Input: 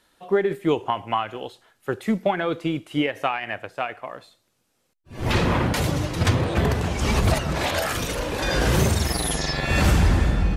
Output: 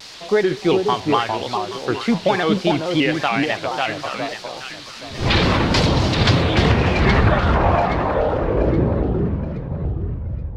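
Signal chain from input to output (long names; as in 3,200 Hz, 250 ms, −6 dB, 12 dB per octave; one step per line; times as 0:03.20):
fade-out on the ending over 3.33 s
in parallel at 0 dB: brickwall limiter −15 dBFS, peak gain reduction 7.5 dB
on the sum: bit-depth reduction 6 bits, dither triangular
low-pass filter sweep 4,400 Hz → 120 Hz, 0:06.30–0:09.82
on a send: delay that swaps between a low-pass and a high-pass 412 ms, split 1,100 Hz, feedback 54%, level −3 dB
on the sum: pitch modulation by a square or saw wave square 3.5 Hz, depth 100 cents
level −1 dB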